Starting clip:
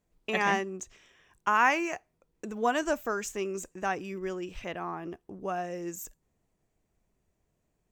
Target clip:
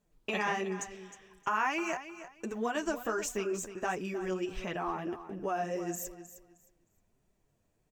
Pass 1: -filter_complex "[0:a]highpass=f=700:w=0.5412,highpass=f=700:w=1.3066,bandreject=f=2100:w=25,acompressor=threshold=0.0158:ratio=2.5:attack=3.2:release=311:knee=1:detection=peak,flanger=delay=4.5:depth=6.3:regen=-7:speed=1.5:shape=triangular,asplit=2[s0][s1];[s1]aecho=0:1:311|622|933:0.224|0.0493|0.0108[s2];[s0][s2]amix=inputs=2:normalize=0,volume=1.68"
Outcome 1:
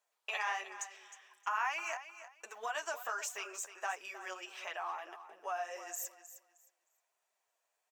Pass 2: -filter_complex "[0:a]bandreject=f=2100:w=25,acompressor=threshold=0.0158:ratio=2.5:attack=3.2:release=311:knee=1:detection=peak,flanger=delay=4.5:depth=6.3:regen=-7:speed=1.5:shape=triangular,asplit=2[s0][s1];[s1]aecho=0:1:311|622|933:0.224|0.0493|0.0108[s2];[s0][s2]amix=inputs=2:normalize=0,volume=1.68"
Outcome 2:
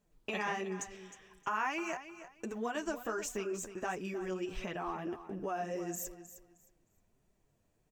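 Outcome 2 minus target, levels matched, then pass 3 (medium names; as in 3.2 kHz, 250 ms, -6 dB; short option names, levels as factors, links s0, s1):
compression: peak gain reduction +4 dB
-filter_complex "[0:a]bandreject=f=2100:w=25,acompressor=threshold=0.0335:ratio=2.5:attack=3.2:release=311:knee=1:detection=peak,flanger=delay=4.5:depth=6.3:regen=-7:speed=1.5:shape=triangular,asplit=2[s0][s1];[s1]aecho=0:1:311|622|933:0.224|0.0493|0.0108[s2];[s0][s2]amix=inputs=2:normalize=0,volume=1.68"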